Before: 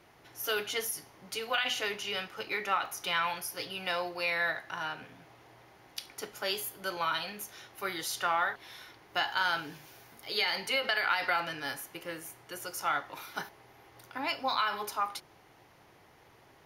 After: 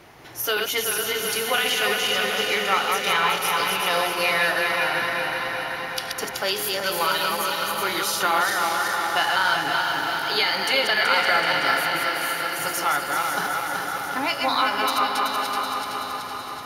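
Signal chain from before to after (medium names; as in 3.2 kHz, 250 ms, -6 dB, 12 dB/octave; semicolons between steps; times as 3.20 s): backward echo that repeats 189 ms, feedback 75%, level -3.5 dB; 12.04–12.59 s: Bessel high-pass 500 Hz; in parallel at +2 dB: compression, threshold -38 dBFS, peak gain reduction 14.5 dB; on the sum: echo that smears into a reverb 572 ms, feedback 46%, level -6.5 dB; trim +4.5 dB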